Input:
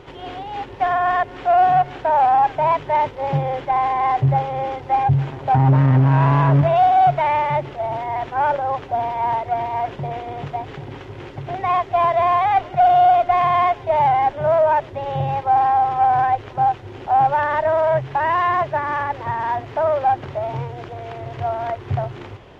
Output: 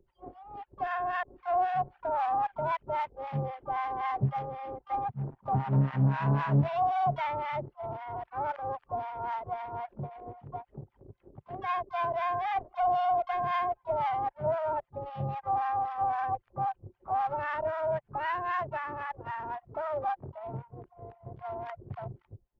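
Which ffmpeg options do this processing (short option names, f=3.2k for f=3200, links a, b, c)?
-filter_complex "[0:a]acrossover=split=820[a][b];[a]aeval=exprs='val(0)*(1-1/2+1/2*cos(2*PI*3.8*n/s))':c=same[c];[b]aeval=exprs='val(0)*(1-1/2-1/2*cos(2*PI*3.8*n/s))':c=same[d];[c][d]amix=inputs=2:normalize=0,anlmdn=15.8,asplit=2[e][f];[f]asetrate=66075,aresample=44100,atempo=0.66742,volume=-14dB[g];[e][g]amix=inputs=2:normalize=0,volume=-8dB"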